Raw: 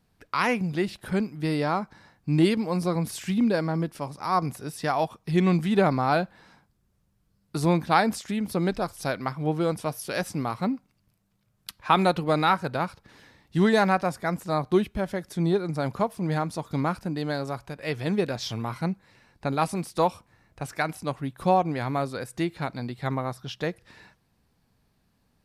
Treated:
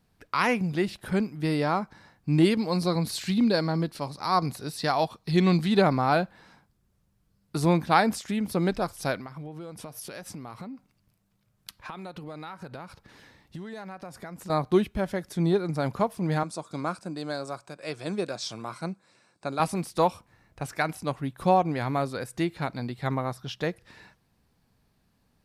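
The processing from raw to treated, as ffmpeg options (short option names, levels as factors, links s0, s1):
-filter_complex "[0:a]asettb=1/sr,asplit=3[s0][s1][s2];[s0]atrim=end=2.584[s3];[s1]atrim=start=2.58:end=5.82,asetpts=PTS-STARTPTS,afade=t=in:d=0.004:c=qsin,afade=t=out:st=3.236:d=0.004:c=qsin,equalizer=f=4200:w=4:g=12.5[s4];[s2]atrim=start=5.816[s5];[s3][s4]acrossfade=d=0.004:c1=hsin:c2=qsin[s6];[s6][s5]acrossfade=d=0.004:c1=qsin:c2=hsin,asettb=1/sr,asplit=3[s7][s8][s9];[s7]atrim=end=9.194[s10];[s8]atrim=start=9.19:end=14.5,asetpts=PTS-STARTPTS,afade=t=in:d=0.004:c=qsin,afade=t=out:st=5.306:d=0.004:c=qsin,acompressor=threshold=0.0178:ratio=20:attack=3.2:release=140:knee=1:detection=peak[s11];[s9]atrim=start=14.496[s12];[s10][s11]acrossfade=d=0.004:c1=hsin:c2=qsin[s13];[s13][s12]acrossfade=d=0.004:c1=qsin:c2=hsin,asettb=1/sr,asplit=3[s14][s15][s16];[s14]atrim=end=16.434[s17];[s15]atrim=start=16.43:end=19.6,asetpts=PTS-STARTPTS,afade=t=in:d=0.004:c=qsin,afade=t=out:st=3.166:d=0.004:c=qsin,highpass=230,equalizer=f=250:t=q:w=4:g=-7,equalizer=f=440:t=q:w=4:g=-5,equalizer=f=860:t=q:w=4:g=-6,equalizer=f=1900:t=q:w=4:g=-9,equalizer=f=3000:t=q:w=4:g=-7,equalizer=f=8200:t=q:w=4:g=8,lowpass=f=9900:w=0.5412,lowpass=f=9900:w=1.3066[s18];[s16]atrim=start=19.596[s19];[s17][s18]acrossfade=d=0.004:c1=hsin:c2=qsin[s20];[s20][s19]acrossfade=d=0.004:c1=qsin:c2=hsin"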